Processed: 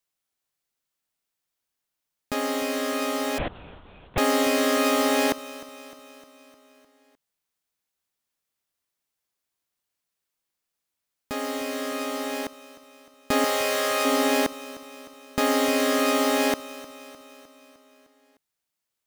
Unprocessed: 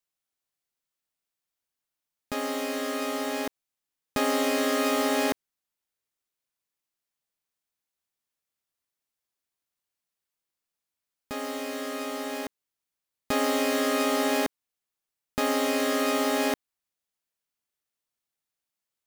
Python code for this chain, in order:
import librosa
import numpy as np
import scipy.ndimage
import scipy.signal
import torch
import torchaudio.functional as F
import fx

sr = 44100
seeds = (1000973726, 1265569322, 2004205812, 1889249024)

p1 = fx.peak_eq(x, sr, hz=270.0, db=-14.5, octaves=0.69, at=(13.44, 14.05))
p2 = p1 + fx.echo_feedback(p1, sr, ms=305, feedback_pct=59, wet_db=-17, dry=0)
p3 = fx.lpc_vocoder(p2, sr, seeds[0], excitation='whisper', order=8, at=(3.38, 4.18))
y = p3 * 10.0 ** (3.5 / 20.0)